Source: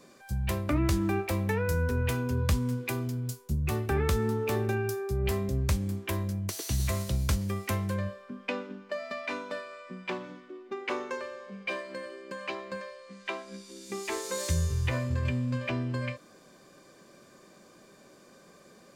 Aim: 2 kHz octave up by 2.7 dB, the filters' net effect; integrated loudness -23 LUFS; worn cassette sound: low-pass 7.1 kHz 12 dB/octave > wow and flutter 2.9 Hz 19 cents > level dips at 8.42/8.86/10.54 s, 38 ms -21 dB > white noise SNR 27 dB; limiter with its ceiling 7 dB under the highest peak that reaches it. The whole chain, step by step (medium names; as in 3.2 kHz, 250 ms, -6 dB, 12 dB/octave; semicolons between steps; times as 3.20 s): peaking EQ 2 kHz +3.5 dB; peak limiter -22 dBFS; low-pass 7.1 kHz 12 dB/octave; wow and flutter 2.9 Hz 19 cents; level dips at 8.42/8.86/10.54 s, 38 ms -21 dB; white noise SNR 27 dB; trim +10 dB